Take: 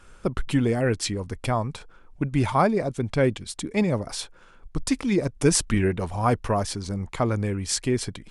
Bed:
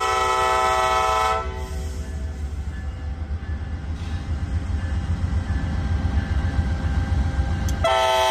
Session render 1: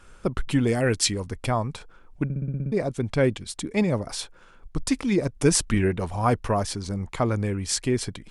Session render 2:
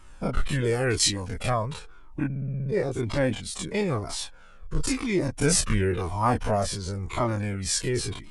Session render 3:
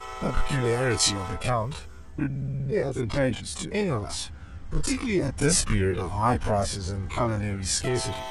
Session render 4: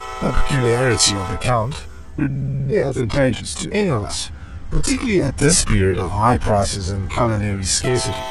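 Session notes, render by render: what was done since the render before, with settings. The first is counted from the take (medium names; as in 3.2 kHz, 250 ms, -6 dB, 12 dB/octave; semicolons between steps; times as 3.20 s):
0.67–1.26 s: treble shelf 2.5 kHz +7.5 dB; 2.24 s: stutter in place 0.06 s, 8 plays
every event in the spectrogram widened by 60 ms; Shepard-style flanger falling 0.97 Hz
add bed -17 dB
trim +8 dB; peak limiter -2 dBFS, peak gain reduction 1.5 dB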